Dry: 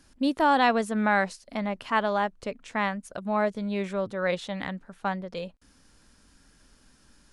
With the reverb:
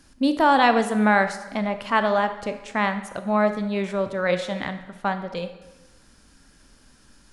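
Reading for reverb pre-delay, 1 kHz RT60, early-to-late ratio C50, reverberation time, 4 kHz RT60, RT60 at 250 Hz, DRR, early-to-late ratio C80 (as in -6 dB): 22 ms, 1.1 s, 10.5 dB, 1.1 s, 0.90 s, 1.0 s, 8.5 dB, 12.5 dB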